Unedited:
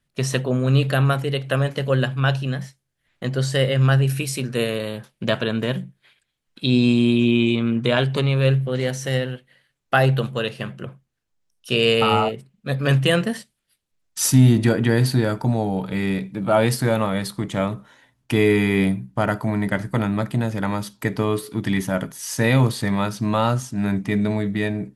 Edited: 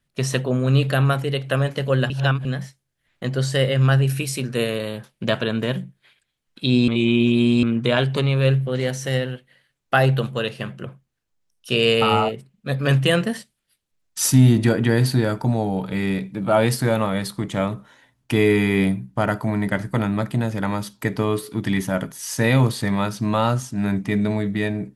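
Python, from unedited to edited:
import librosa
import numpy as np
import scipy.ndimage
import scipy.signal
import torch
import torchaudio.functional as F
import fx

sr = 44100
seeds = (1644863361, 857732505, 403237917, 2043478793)

y = fx.edit(x, sr, fx.reverse_span(start_s=2.1, length_s=0.35),
    fx.reverse_span(start_s=6.88, length_s=0.75), tone=tone)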